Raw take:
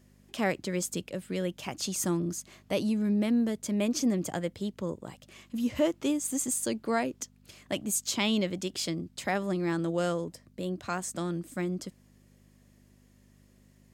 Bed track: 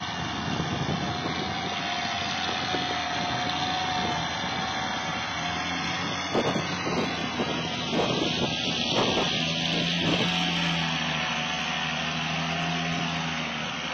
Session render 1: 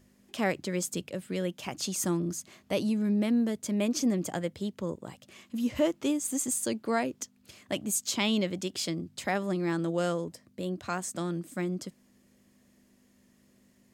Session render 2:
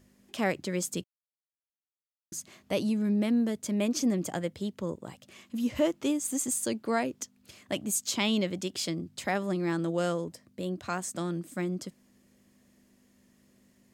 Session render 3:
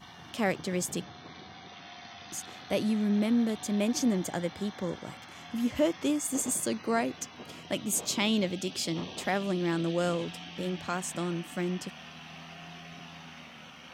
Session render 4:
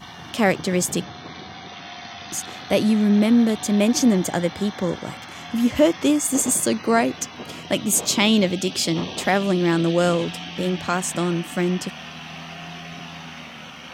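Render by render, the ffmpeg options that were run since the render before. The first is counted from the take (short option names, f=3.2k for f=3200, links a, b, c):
-af "bandreject=f=50:t=h:w=4,bandreject=f=100:t=h:w=4,bandreject=f=150:t=h:w=4"
-filter_complex "[0:a]asplit=3[a][b][c];[a]atrim=end=1.04,asetpts=PTS-STARTPTS,afade=t=out:st=1.036:d=0.004:c=hsin[d];[b]atrim=start=1.04:end=2.32,asetpts=PTS-STARTPTS,volume=0[e];[c]atrim=start=2.32,asetpts=PTS-STARTPTS,afade=t=in:d=0.004:c=hsin[f];[d][e][f]concat=n=3:v=0:a=1"
-filter_complex "[1:a]volume=-18dB[a];[0:a][a]amix=inputs=2:normalize=0"
-af "volume=10dB"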